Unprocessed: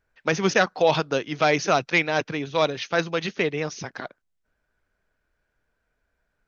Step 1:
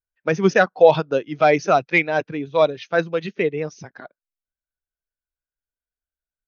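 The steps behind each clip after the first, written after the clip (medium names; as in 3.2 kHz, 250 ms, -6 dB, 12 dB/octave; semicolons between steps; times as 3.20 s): spectral contrast expander 1.5:1; trim +3.5 dB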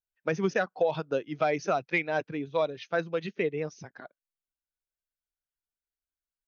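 compression 6:1, threshold -16 dBFS, peak gain reduction 9.5 dB; trim -6.5 dB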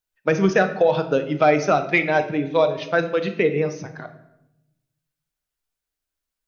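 simulated room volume 280 m³, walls mixed, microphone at 0.48 m; trim +8.5 dB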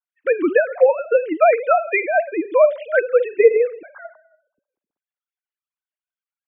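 formants replaced by sine waves; trim +3 dB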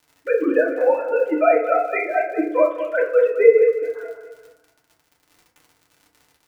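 on a send: feedback delay 210 ms, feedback 41%, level -11 dB; on the sum: crackle 69 per s -32 dBFS; FDN reverb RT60 0.55 s, low-frequency decay 1.1×, high-frequency decay 0.45×, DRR -3.5 dB; trim -8 dB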